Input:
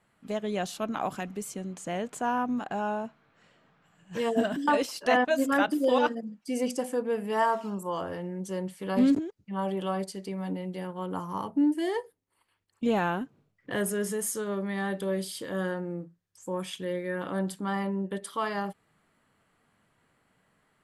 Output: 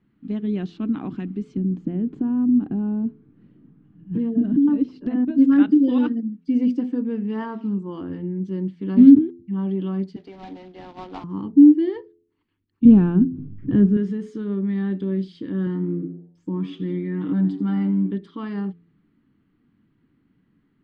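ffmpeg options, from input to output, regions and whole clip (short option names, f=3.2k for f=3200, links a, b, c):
-filter_complex "[0:a]asettb=1/sr,asplit=3[a][b][c];[a]atrim=end=1.574[d];[b]atrim=start=1.57:end=5.38,asetpts=PTS-STARTPTS,afade=t=in:d=0.004:c=qsin,afade=t=out:st=3.806:d=0.004:c=qsin,tiltshelf=f=820:g=8.5,acompressor=threshold=-28dB:ratio=3:attack=3.2:release=140:knee=1:detection=peak[e];[c]atrim=start=5.376[f];[d][e]acrossfade=d=0.004:c1=hsin:c2=qsin[g];[g][f]acrossfade=d=0.004:c1=qsin:c2=hsin,asettb=1/sr,asplit=3[h][i][j];[h]atrim=end=10.164[k];[i]atrim=start=10.16:end=11.24,asetpts=PTS-STARTPTS,afade=t=in:d=0.004:c=qsin,afade=t=out:st=1.076:d=0.004:c=qsin,highpass=f=710:t=q:w=7.8,acrusher=bits=2:mode=log:mix=0:aa=0.000001[l];[j]atrim=start=11.236[m];[k][l]acrossfade=d=0.004:c1=hsin:c2=qsin[n];[n][m]acrossfade=d=0.004:c1=qsin:c2=hsin,asettb=1/sr,asplit=3[o][p][q];[o]atrim=end=12.854[r];[p]atrim=start=12.85:end=13.97,asetpts=PTS-STARTPTS,afade=t=in:d=0.004:c=qsin,afade=t=out:st=1.116:d=0.004:c=qsin,bandreject=f=2k:w=6.4,acompressor=mode=upward:threshold=-39dB:ratio=2.5:attack=3.2:release=140:knee=2.83:detection=peak,aemphasis=mode=reproduction:type=riaa[s];[q]atrim=start=13.966[t];[r][s]acrossfade=d=0.004:c1=hsin:c2=qsin[u];[u][t]acrossfade=d=0.004:c1=qsin:c2=hsin,asettb=1/sr,asplit=3[v][w][x];[v]atrim=end=15.664[y];[w]atrim=start=15.66:end=18.11,asetpts=PTS-STARTPTS,afade=t=in:d=0.004:c=qsin,afade=t=out:st=2.446:d=0.004:c=qsin,aecho=1:1:6.5:0.68,atrim=end_sample=108045,asplit=5[z][aa][ab][ac][ad];[aa]adelay=83,afreqshift=96,volume=-15dB[ae];[ab]adelay=166,afreqshift=192,volume=-21.7dB[af];[ac]adelay=249,afreqshift=288,volume=-28.5dB[ag];[ad]adelay=332,afreqshift=384,volume=-35.2dB[ah];[z][ae][af][ag][ah]amix=inputs=5:normalize=0,atrim=end_sample=108045[ai];[x]atrim=start=18.106[aj];[y][ai]acrossfade=d=0.004:c1=hsin:c2=qsin[ak];[ak][aj]acrossfade=d=0.004:c1=qsin:c2=hsin,lowpass=f=4.1k:w=0.5412,lowpass=f=4.1k:w=1.3066,lowshelf=f=420:t=q:w=3:g=12.5,bandreject=f=85.61:t=h:w=4,bandreject=f=171.22:t=h:w=4,bandreject=f=256.83:t=h:w=4,bandreject=f=342.44:t=h:w=4,bandreject=f=428.05:t=h:w=4,volume=-6dB"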